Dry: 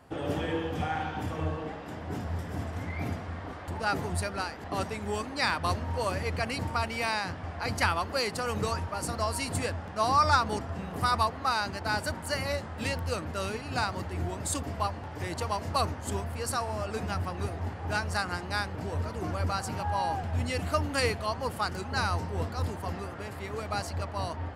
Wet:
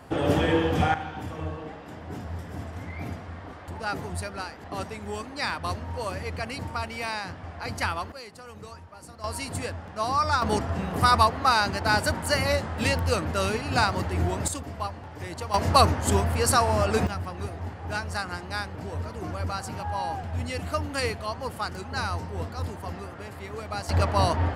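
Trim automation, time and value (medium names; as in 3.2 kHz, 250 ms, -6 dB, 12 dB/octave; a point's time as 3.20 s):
+8.5 dB
from 0.94 s -1.5 dB
from 8.12 s -12.5 dB
from 9.24 s -1 dB
from 10.42 s +7 dB
from 14.48 s -1.5 dB
from 15.54 s +10 dB
from 17.07 s -0.5 dB
from 23.89 s +11 dB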